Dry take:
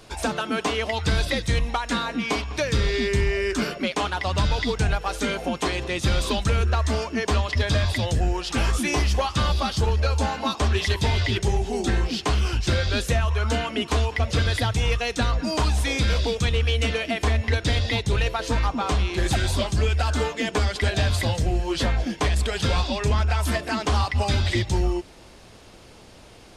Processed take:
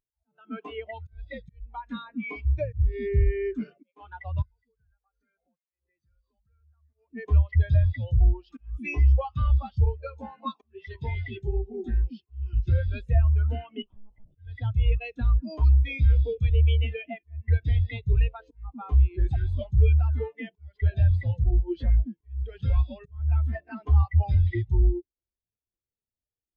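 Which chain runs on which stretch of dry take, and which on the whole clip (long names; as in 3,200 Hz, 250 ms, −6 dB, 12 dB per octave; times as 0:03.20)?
0:02.45–0:02.92: parametric band 89 Hz +13 dB 1.4 octaves + highs frequency-modulated by the lows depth 0.37 ms
0:04.42–0:06.94: Chebyshev low-pass with heavy ripple 6,300 Hz, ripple 9 dB + downward compressor, threshold −36 dBFS
0:09.89–0:12.11: variable-slope delta modulation 64 kbit/s + parametric band 77 Hz −15 dB 0.3 octaves + double-tracking delay 13 ms −8.5 dB
0:13.82–0:14.36: parametric band 2,000 Hz −13.5 dB 0.35 octaves + hard clipping −30 dBFS + one-pitch LPC vocoder at 8 kHz 210 Hz
whole clip: dynamic equaliser 2,400 Hz, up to +4 dB, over −38 dBFS, Q 1.1; volume swells 295 ms; every bin expanded away from the loudest bin 2.5 to 1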